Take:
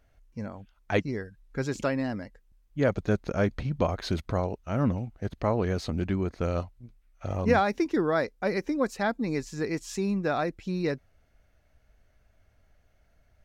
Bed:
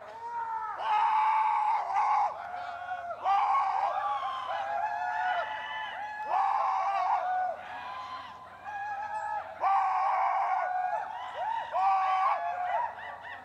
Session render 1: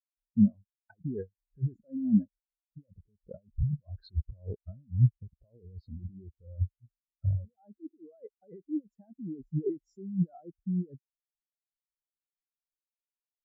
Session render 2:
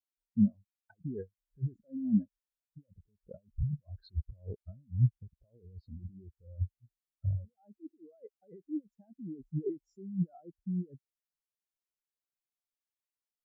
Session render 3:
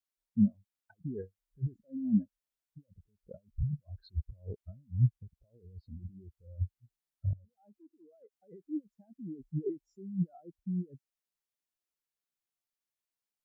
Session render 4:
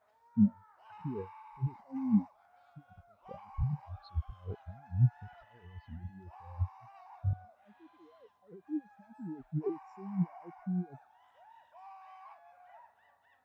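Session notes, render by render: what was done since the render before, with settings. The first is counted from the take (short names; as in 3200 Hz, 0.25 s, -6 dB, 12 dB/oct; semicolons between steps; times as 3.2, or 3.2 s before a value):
negative-ratio compressor -34 dBFS, ratio -1; spectral expander 4:1
gain -3.5 dB
1.2–1.67 doubler 32 ms -12.5 dB; 7.33–8.4 compressor 3:1, threshold -57 dBFS
add bed -26 dB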